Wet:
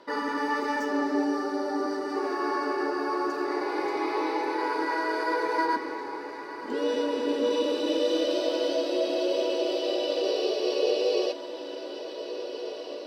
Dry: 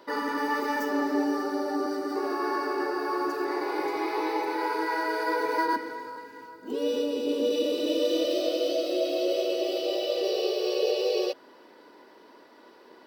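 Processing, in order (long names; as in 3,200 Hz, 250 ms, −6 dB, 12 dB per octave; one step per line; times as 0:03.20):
low-pass filter 8,600 Hz 12 dB per octave
feedback delay with all-pass diffusion 1,752 ms, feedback 58%, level −11 dB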